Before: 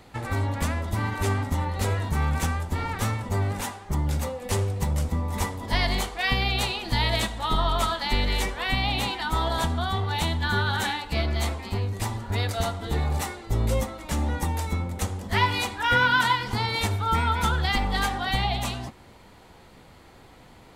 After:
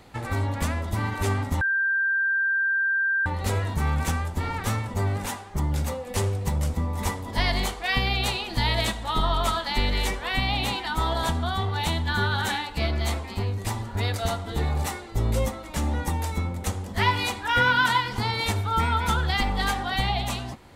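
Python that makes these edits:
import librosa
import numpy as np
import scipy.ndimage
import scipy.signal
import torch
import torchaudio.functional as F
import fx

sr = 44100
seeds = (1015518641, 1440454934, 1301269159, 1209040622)

y = fx.edit(x, sr, fx.insert_tone(at_s=1.61, length_s=1.65, hz=1580.0, db=-20.5), tone=tone)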